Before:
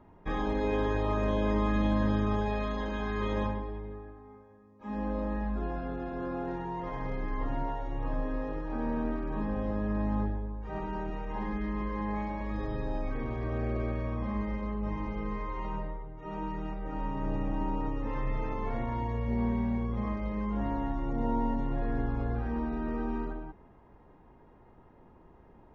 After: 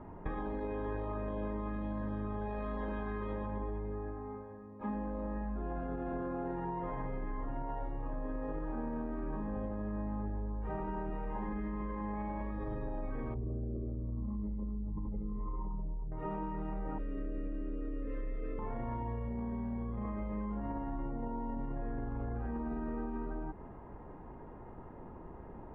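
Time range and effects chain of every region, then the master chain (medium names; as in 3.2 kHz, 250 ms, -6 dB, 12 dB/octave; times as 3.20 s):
13.34–16.12 s: resonances exaggerated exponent 2 + distance through air 360 m
16.98–18.59 s: Butterworth band-stop 860 Hz, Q 2.6 + static phaser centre 370 Hz, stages 4
whole clip: low-pass 1.7 kHz 12 dB/octave; peak limiter -29.5 dBFS; compression, threshold -43 dBFS; trim +8 dB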